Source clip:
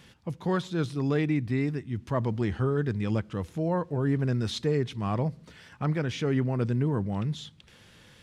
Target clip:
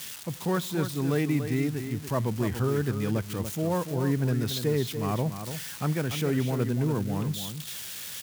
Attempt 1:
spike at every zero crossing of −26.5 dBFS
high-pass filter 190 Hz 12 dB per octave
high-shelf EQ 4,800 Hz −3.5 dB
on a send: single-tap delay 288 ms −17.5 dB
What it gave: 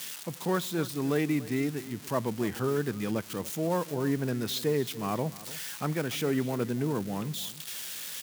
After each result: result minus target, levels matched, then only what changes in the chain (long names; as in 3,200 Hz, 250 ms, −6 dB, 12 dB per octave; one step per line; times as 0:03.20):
echo-to-direct −8.5 dB; 125 Hz band −4.5 dB
change: single-tap delay 288 ms −9 dB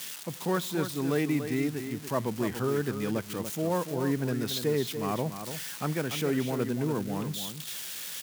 125 Hz band −4.5 dB
change: high-pass filter 73 Hz 12 dB per octave